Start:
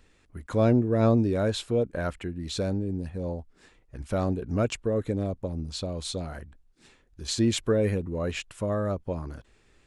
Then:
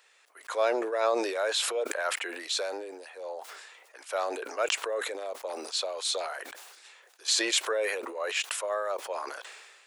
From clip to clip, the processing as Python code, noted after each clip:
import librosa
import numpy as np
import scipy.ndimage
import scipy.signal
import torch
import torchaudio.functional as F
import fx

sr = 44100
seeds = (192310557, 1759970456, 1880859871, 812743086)

y = scipy.signal.sosfilt(scipy.signal.bessel(8, 850.0, 'highpass', norm='mag', fs=sr, output='sos'), x)
y = fx.sustainer(y, sr, db_per_s=38.0)
y = y * librosa.db_to_amplitude(5.0)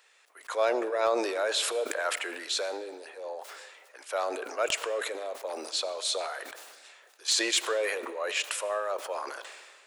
y = fx.rev_freeverb(x, sr, rt60_s=1.7, hf_ratio=0.75, predelay_ms=40, drr_db=15.5)
y = 10.0 ** (-15.5 / 20.0) * (np.abs((y / 10.0 ** (-15.5 / 20.0) + 3.0) % 4.0 - 2.0) - 1.0)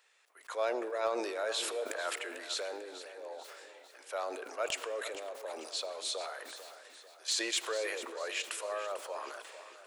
y = fx.echo_feedback(x, sr, ms=445, feedback_pct=47, wet_db=-13)
y = y * librosa.db_to_amplitude(-6.5)